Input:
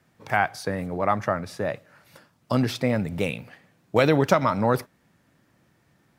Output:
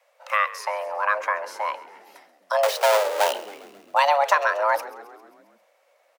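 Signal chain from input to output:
0:02.63–0:03.33: each half-wave held at its own peak
frequency shifter +420 Hz
echo with shifted repeats 134 ms, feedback 61%, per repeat −55 Hz, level −17.5 dB

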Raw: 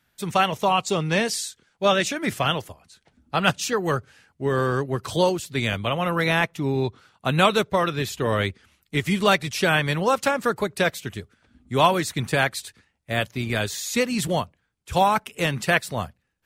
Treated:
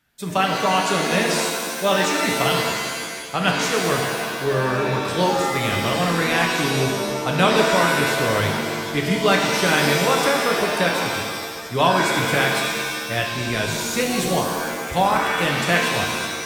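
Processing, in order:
reverb with rising layers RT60 1.7 s, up +7 semitones, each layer −2 dB, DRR 1 dB
level −1 dB

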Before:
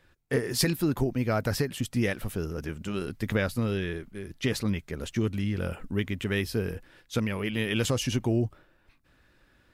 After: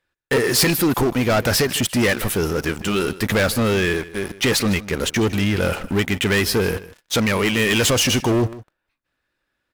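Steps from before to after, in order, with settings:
low-shelf EQ 300 Hz −10.5 dB
leveller curve on the samples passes 5
single-tap delay 155 ms −17.5 dB

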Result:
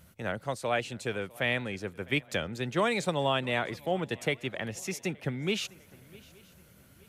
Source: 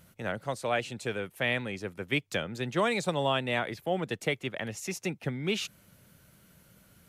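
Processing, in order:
parametric band 76 Hz +8 dB 0.32 octaves
feedback echo with a long and a short gap by turns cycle 871 ms, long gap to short 3 to 1, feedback 34%, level −23.5 dB

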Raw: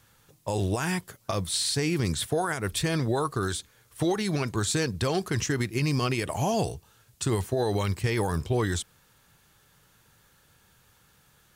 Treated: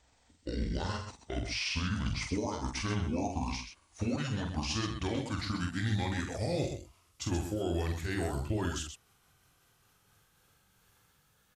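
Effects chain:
pitch glide at a constant tempo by −10.5 semitones ending unshifted
multi-tap delay 46/128 ms −5.5/−8 dB
level −6.5 dB

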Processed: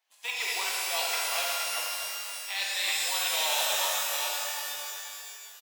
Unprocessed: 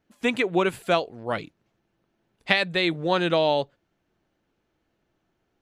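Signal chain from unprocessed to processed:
delay that plays each chunk backwards 387 ms, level −7.5 dB
in parallel at −8.5 dB: sample-rate reduction 3,300 Hz
on the sum: brickwall limiter −10.5 dBFS, peak gain reduction 8 dB
high-pass filter 980 Hz 24 dB per octave
reversed playback
downward compressor, threshold −31 dBFS, peak gain reduction 10.5 dB
reversed playback
parametric band 1,400 Hz −14 dB 0.77 octaves
echo with shifted repeats 257 ms, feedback 59%, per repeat −37 Hz, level −17.5 dB
reverb with rising layers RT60 2.5 s, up +12 semitones, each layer −2 dB, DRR −3.5 dB
level +3.5 dB

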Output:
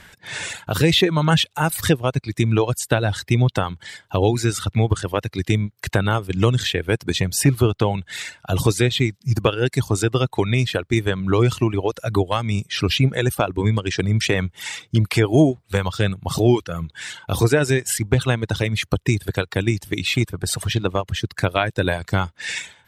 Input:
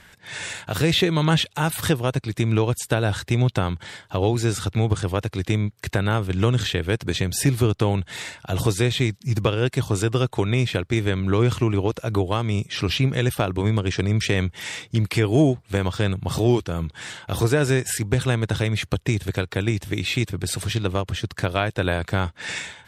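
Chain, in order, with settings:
reverb reduction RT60 1.9 s
level +4 dB

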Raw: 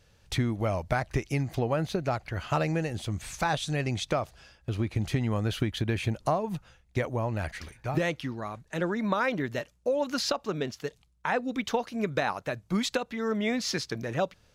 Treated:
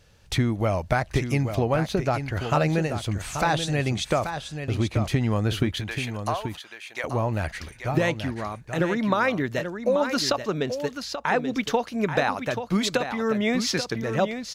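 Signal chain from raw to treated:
0:05.75–0:07.04: high-pass filter 930 Hz 12 dB per octave
single-tap delay 833 ms −8.5 dB
level +4.5 dB

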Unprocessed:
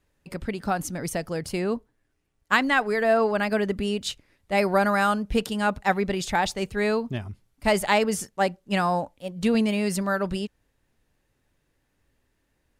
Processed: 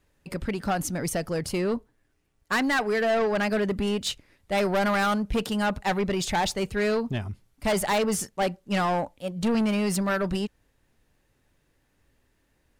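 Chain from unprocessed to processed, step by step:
soft clipping −23 dBFS, distortion −9 dB
level +3 dB

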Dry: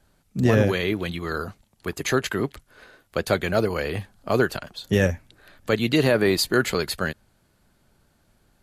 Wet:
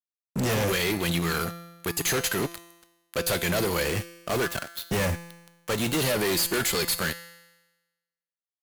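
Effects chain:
0:03.84–0:05.99: running median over 9 samples
first-order pre-emphasis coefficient 0.8
fuzz pedal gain 42 dB, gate −50 dBFS
tuned comb filter 170 Hz, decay 1.1 s, mix 70%

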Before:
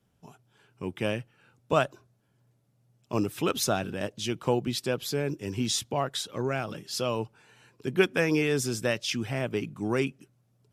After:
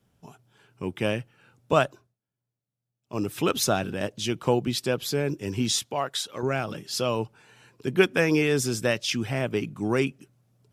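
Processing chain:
0:01.85–0:03.33: duck −22.5 dB, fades 0.31 s
0:05.79–0:06.43: low-shelf EQ 330 Hz −11 dB
level +3 dB

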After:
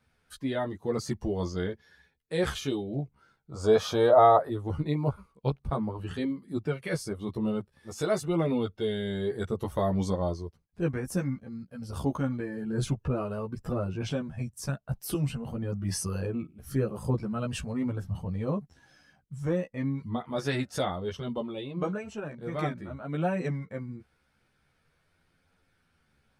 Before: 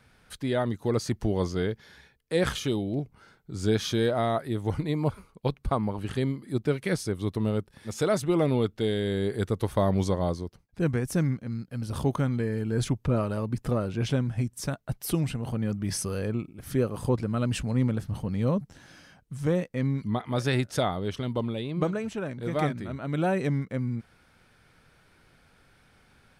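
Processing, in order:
0:03.51–0:04.50: flat-topped bell 770 Hz +13.5 dB
noise reduction from a noise print of the clip's start 8 dB
multi-voice chorus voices 2, 0.47 Hz, delay 13 ms, depth 2 ms

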